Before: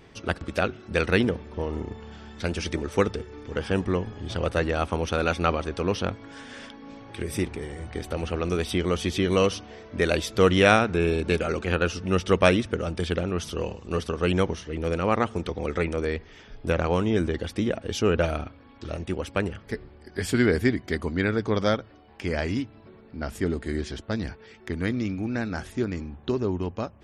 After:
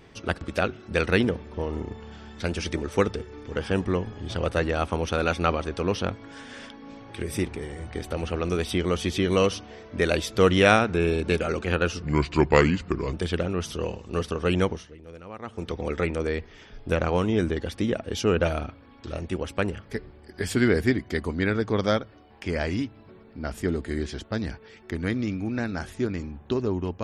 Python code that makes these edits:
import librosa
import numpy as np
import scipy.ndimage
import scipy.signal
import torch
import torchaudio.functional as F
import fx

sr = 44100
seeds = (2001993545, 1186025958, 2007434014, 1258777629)

y = fx.edit(x, sr, fx.speed_span(start_s=12.02, length_s=0.89, speed=0.8),
    fx.fade_down_up(start_s=14.41, length_s=1.12, db=-17.0, fade_s=0.34), tone=tone)